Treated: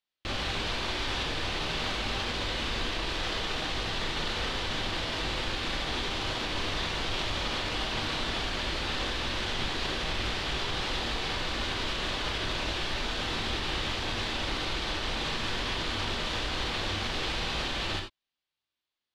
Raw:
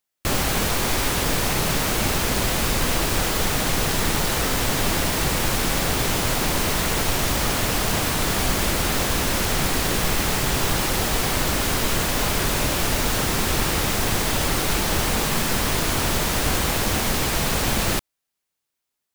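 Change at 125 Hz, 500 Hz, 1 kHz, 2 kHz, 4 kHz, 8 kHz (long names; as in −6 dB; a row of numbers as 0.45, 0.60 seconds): −12.0, −10.5, −9.0, −7.5, −4.5, −19.5 decibels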